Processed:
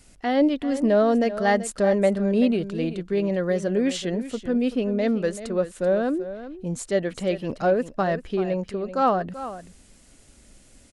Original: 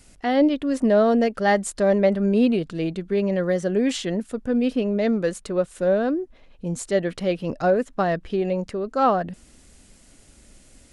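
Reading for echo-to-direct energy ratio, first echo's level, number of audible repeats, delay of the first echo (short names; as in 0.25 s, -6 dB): -13.0 dB, -13.0 dB, 1, 0.385 s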